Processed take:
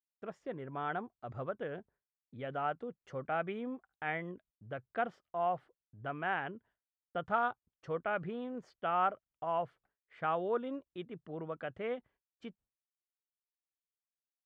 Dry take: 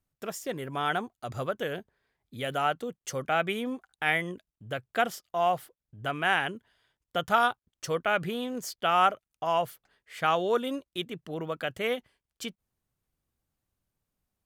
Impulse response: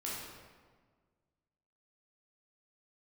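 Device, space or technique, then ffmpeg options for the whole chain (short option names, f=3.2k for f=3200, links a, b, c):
hearing-loss simulation: -af "lowpass=1.6k,agate=range=-33dB:threshold=-54dB:ratio=3:detection=peak,volume=-7dB"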